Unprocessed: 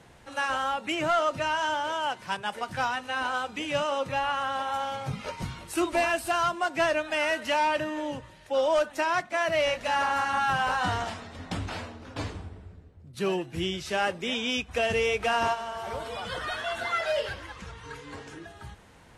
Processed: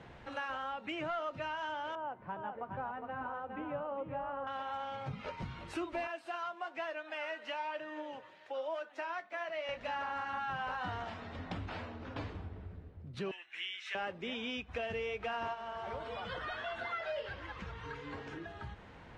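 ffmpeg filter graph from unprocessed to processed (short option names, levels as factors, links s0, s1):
-filter_complex "[0:a]asettb=1/sr,asplit=3[s0][s1][s2];[s0]atrim=end=1.954[s3];[s1]atrim=start=1.95:end=4.47,asetpts=PTS-STARTPTS,afade=t=in:d=0.004:c=qsin,afade=t=out:st=2.516:d=0.004:c=qsin,lowpass=1000,aecho=1:1:410:0.501,atrim=end_sample=111132[s4];[s2]atrim=start=4.466[s5];[s3][s4]acrossfade=d=0.004:c1=hsin:c2=qsin[s6];[s6][s5]acrossfade=d=0.004:c1=qsin:c2=hsin,asettb=1/sr,asplit=3[s7][s8][s9];[s7]atrim=end=6.074[s10];[s8]atrim=start=6.07:end=9.69,asetpts=PTS-STARTPTS,afade=t=in:d=0.004:c=qsin,afade=t=out:st=3.616:d=0.004:c=qsin,highpass=380,flanger=delay=5.9:depth=4.2:regen=60:speed=1.1:shape=sinusoidal[s11];[s9]atrim=start=9.686[s12];[s10][s11]acrossfade=d=0.004:c1=hsin:c2=qsin[s13];[s13][s12]acrossfade=d=0.004:c1=qsin:c2=hsin,asettb=1/sr,asplit=3[s14][s15][s16];[s14]atrim=end=13.314[s17];[s15]atrim=start=13.31:end=13.95,asetpts=PTS-STARTPTS,afade=t=in:d=0.004:c=qsin,afade=t=out:st=0.636:d=0.004:c=qsin,highpass=f=2000:t=q:w=2.1,equalizer=f=4700:w=7.2:g=-13[s18];[s16]atrim=start=13.946[s19];[s17][s18]acrossfade=d=0.004:c1=hsin:c2=qsin[s20];[s20][s19]acrossfade=d=0.004:c1=qsin:c2=hsin,lowpass=3200,acompressor=threshold=0.00708:ratio=2.5,volume=1.12"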